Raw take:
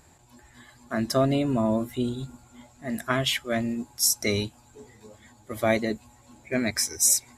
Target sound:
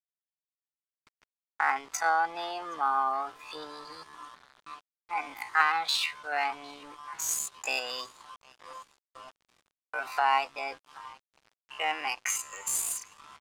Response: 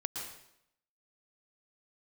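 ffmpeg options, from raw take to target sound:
-filter_complex "[0:a]agate=range=-13dB:threshold=-46dB:ratio=16:detection=peak,acompressor=threshold=-33dB:ratio=3,highpass=frequency=880:width_type=q:width=4.6,asetrate=53981,aresample=44100,atempo=0.816958,asplit=5[link_01][link_02][link_03][link_04][link_05];[link_02]adelay=417,afreqshift=110,volume=-22dB[link_06];[link_03]adelay=834,afreqshift=220,volume=-26.6dB[link_07];[link_04]adelay=1251,afreqshift=330,volume=-31.2dB[link_08];[link_05]adelay=1668,afreqshift=440,volume=-35.7dB[link_09];[link_01][link_06][link_07][link_08][link_09]amix=inputs=5:normalize=0,atempo=0.55,aeval=exprs='val(0)*gte(abs(val(0)),0.00266)':channel_layout=same,adynamicsmooth=sensitivity=7.5:basefreq=5600,volume=5.5dB"

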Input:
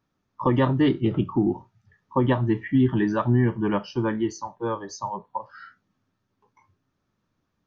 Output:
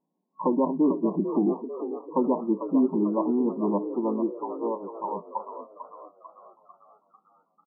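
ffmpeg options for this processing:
ffmpeg -i in.wav -filter_complex "[0:a]afftfilt=real='re*between(b*sr/4096,160,1100)':imag='im*between(b*sr/4096,160,1100)':win_size=4096:overlap=0.75,asplit=7[link_01][link_02][link_03][link_04][link_05][link_06][link_07];[link_02]adelay=446,afreqshift=58,volume=-9.5dB[link_08];[link_03]adelay=892,afreqshift=116,volume=-15.2dB[link_09];[link_04]adelay=1338,afreqshift=174,volume=-20.9dB[link_10];[link_05]adelay=1784,afreqshift=232,volume=-26.5dB[link_11];[link_06]adelay=2230,afreqshift=290,volume=-32.2dB[link_12];[link_07]adelay=2676,afreqshift=348,volume=-37.9dB[link_13];[link_01][link_08][link_09][link_10][link_11][link_12][link_13]amix=inputs=7:normalize=0,volume=-1.5dB" out.wav

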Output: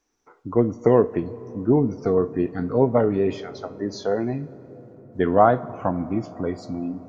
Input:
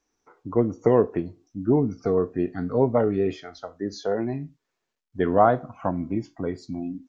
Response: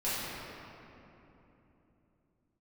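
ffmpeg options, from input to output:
-filter_complex "[0:a]asplit=2[link_01][link_02];[1:a]atrim=start_sample=2205,asetrate=22491,aresample=44100,adelay=8[link_03];[link_02][link_03]afir=irnorm=-1:irlink=0,volume=-30.5dB[link_04];[link_01][link_04]amix=inputs=2:normalize=0,volume=2dB"

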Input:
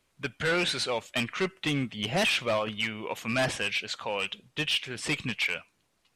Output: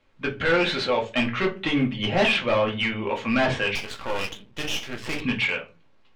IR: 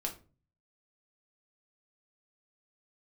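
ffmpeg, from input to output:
-filter_complex "[1:a]atrim=start_sample=2205,asetrate=57330,aresample=44100[link_01];[0:a][link_01]afir=irnorm=-1:irlink=0,acontrast=72,lowpass=3200,aeval=exprs='0.299*(cos(1*acos(clip(val(0)/0.299,-1,1)))-cos(1*PI/2))+0.0133*(cos(5*acos(clip(val(0)/0.299,-1,1)))-cos(5*PI/2))':channel_layout=same,asettb=1/sr,asplit=3[link_02][link_03][link_04];[link_02]atrim=end=3.754[link_05];[link_03]atrim=start=3.75:end=5.22,asetpts=PTS-STARTPTS,afade=type=in:duration=0.004:curve=qsin,afade=type=out:start_time=1.466:duration=0.004:curve=qsin,aeval=exprs='max(val(0),0)':channel_layout=same[link_06];[link_04]atrim=start=5.216[link_07];[link_05][link_06]acrossfade=duration=0.004:curve1=hsin:curve2=qsin[link_08];[link_08][link_07]acrossfade=duration=0.004:curve1=qsin:curve2=hsin"

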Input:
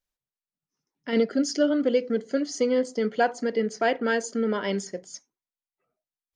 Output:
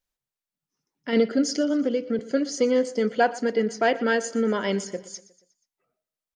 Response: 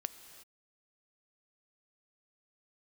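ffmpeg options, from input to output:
-filter_complex "[0:a]asettb=1/sr,asplit=3[link_01][link_02][link_03];[link_01]atrim=end=1.564[link_04];[link_02]atrim=start=1.56:end=2.19,asetpts=PTS-STARTPTS,afade=type=in:duration=0.004:curve=qsin,afade=type=out:start_time=0.626:duration=0.004:curve=qsin,acrossover=split=280[link_05][link_06];[link_06]acompressor=threshold=-28dB:ratio=3[link_07];[link_05][link_07]amix=inputs=2:normalize=0[link_08];[link_03]atrim=start=2.186[link_09];[link_04][link_08]acrossfade=duration=0.004:curve1=hsin:curve2=qsin[link_10];[link_10][link_09]acrossfade=duration=0.004:curve1=qsin:curve2=hsin,aecho=1:1:120|240|360|480:0.119|0.0618|0.0321|0.0167,volume=2dB"

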